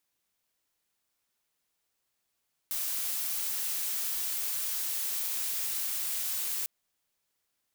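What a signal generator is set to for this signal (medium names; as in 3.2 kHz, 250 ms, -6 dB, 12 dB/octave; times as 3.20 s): noise blue, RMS -32.5 dBFS 3.95 s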